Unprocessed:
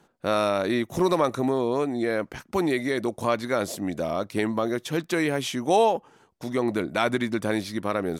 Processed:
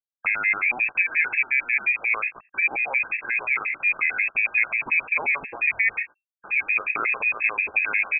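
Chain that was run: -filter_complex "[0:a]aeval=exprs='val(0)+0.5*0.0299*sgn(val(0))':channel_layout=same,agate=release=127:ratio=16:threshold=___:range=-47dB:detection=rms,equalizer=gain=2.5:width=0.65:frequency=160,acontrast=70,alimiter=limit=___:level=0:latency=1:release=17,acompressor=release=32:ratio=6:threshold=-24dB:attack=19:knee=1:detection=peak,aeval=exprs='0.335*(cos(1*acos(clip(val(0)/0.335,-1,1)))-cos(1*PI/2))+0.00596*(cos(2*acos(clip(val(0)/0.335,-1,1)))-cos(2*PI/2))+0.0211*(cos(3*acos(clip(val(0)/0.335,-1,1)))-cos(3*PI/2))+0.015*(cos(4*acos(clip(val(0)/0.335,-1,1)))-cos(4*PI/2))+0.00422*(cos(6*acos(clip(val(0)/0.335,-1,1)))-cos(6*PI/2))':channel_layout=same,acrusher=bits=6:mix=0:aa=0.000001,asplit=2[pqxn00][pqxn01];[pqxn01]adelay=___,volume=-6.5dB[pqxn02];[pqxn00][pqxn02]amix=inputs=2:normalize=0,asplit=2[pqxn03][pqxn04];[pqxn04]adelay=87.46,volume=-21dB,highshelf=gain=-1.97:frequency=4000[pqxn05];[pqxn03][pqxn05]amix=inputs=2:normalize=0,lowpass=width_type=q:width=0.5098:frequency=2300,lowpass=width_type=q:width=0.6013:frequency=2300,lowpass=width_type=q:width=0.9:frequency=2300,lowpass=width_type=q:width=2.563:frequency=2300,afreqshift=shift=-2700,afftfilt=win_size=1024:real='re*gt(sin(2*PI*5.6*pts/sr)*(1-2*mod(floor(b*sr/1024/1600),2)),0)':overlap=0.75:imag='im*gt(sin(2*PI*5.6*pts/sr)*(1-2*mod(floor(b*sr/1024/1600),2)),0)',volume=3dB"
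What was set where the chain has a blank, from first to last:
-29dB, -8dB, 18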